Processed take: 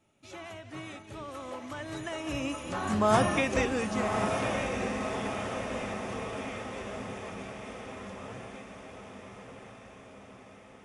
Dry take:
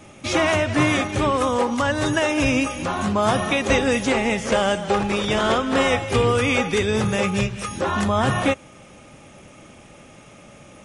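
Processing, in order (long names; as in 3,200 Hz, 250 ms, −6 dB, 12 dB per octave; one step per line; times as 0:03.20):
source passing by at 0:03.18, 16 m/s, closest 4.1 metres
dynamic equaliser 3,500 Hz, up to −5 dB, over −45 dBFS, Q 2.4
feedback delay with all-pass diffusion 1,147 ms, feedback 59%, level −4.5 dB
level −3.5 dB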